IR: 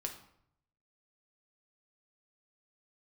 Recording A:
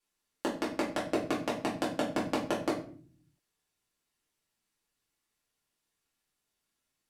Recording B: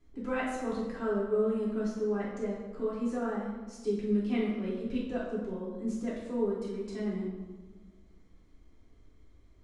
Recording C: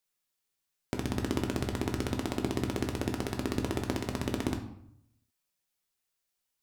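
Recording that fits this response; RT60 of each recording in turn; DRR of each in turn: C; 0.45, 1.4, 0.70 s; -7.0, -7.5, 2.5 dB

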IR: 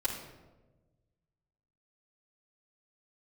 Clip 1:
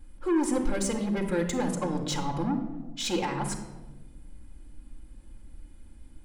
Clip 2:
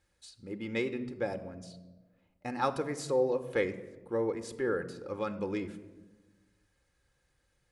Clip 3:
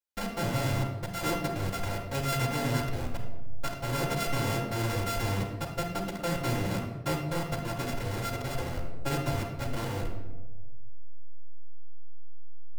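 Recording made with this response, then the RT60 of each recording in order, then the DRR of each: 3; 1.2, 1.3, 1.2 s; -0.5, 7.5, -7.5 dB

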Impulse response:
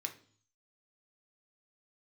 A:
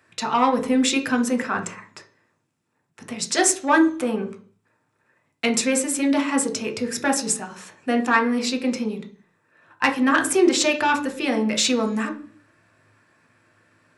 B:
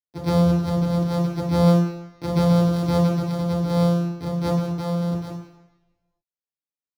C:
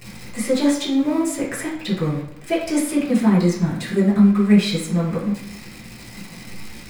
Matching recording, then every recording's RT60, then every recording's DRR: A; not exponential, 1.0 s, 0.70 s; 4.0, -5.0, -7.0 dB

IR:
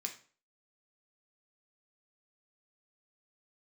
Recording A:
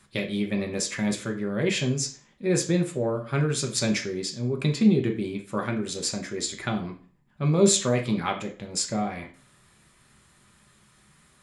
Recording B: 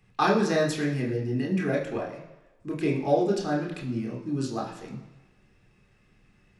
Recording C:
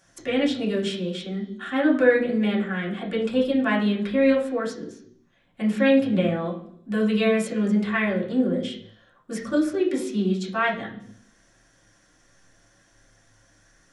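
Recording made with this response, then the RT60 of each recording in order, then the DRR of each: A; 0.40, 1.1, 0.70 s; 2.5, -2.0, -5.0 dB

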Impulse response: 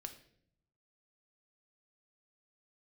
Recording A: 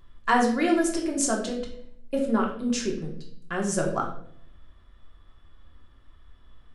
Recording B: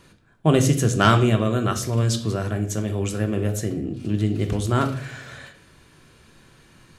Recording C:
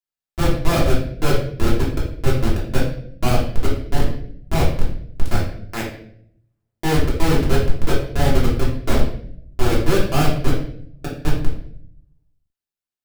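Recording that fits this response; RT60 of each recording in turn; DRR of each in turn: B; 0.65, 0.65, 0.65 s; -1.0, 5.5, -6.5 dB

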